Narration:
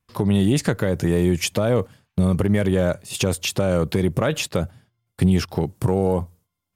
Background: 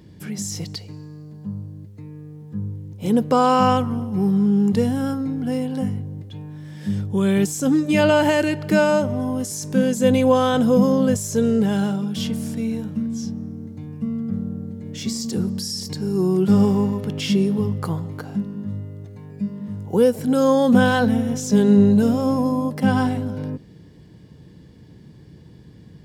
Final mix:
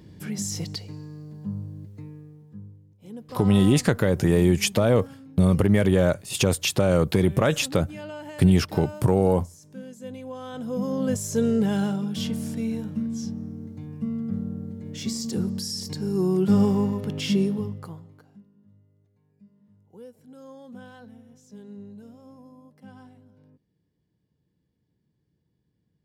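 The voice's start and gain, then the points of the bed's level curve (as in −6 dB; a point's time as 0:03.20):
3.20 s, 0.0 dB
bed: 0:02.00 −1.5 dB
0:02.98 −21.5 dB
0:10.33 −21.5 dB
0:11.23 −3.5 dB
0:17.44 −3.5 dB
0:18.50 −28.5 dB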